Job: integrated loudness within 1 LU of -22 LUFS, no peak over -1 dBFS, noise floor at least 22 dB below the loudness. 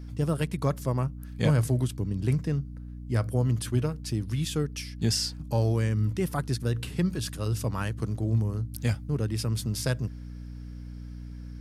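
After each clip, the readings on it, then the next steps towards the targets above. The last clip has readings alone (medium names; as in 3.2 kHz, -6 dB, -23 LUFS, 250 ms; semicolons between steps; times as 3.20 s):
hum 60 Hz; highest harmonic 300 Hz; hum level -38 dBFS; loudness -29.0 LUFS; peak level -12.0 dBFS; loudness target -22.0 LUFS
-> de-hum 60 Hz, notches 5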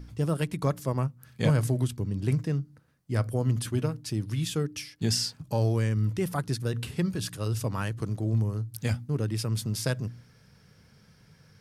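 hum not found; loudness -29.5 LUFS; peak level -11.0 dBFS; loudness target -22.0 LUFS
-> trim +7.5 dB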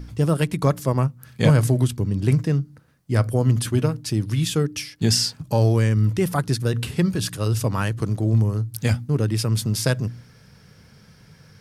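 loudness -22.0 LUFS; peak level -3.5 dBFS; noise floor -52 dBFS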